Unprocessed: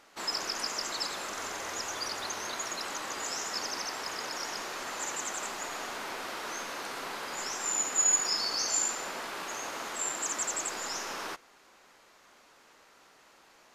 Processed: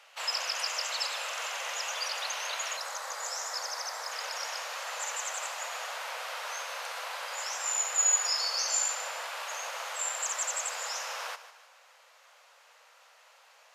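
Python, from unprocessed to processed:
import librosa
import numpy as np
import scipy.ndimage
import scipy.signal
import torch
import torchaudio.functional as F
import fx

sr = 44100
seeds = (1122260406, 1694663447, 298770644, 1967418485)

y = scipy.signal.sosfilt(scipy.signal.butter(16, 480.0, 'highpass', fs=sr, output='sos'), x)
y = fx.peak_eq(y, sr, hz=2800.0, db=fx.steps((0.0, 9.0), (2.77, -7.0), (4.12, 3.0)), octaves=0.6)
y = fx.echo_feedback(y, sr, ms=150, feedback_pct=41, wet_db=-14.0)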